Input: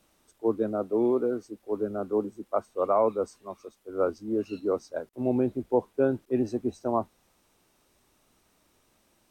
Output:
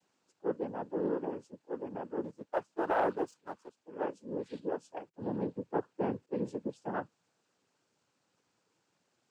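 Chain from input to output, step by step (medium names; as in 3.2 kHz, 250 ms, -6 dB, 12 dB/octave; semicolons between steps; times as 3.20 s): noise-vocoded speech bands 8; 2.24–3.77 s: waveshaping leveller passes 1; trim -8.5 dB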